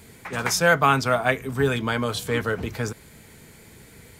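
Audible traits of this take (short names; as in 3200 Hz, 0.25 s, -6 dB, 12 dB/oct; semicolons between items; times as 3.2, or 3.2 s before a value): noise floor -49 dBFS; spectral tilt -4.0 dB/oct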